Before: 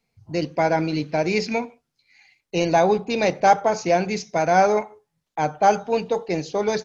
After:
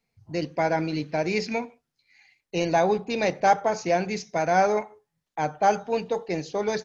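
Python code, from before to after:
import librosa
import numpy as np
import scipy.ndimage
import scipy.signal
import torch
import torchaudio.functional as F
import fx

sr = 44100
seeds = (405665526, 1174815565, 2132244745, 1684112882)

y = fx.peak_eq(x, sr, hz=1800.0, db=3.5, octaves=0.3)
y = y * librosa.db_to_amplitude(-4.0)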